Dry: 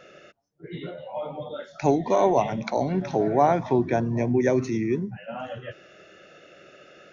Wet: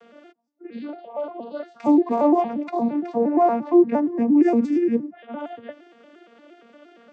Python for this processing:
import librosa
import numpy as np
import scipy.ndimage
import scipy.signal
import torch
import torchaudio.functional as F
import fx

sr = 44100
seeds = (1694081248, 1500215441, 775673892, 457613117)

y = fx.vocoder_arp(x, sr, chord='major triad', root=58, every_ms=116)
y = fx.high_shelf(y, sr, hz=5400.0, db=-8.0, at=(1.94, 4.32))
y = y * 10.0 ** (4.5 / 20.0)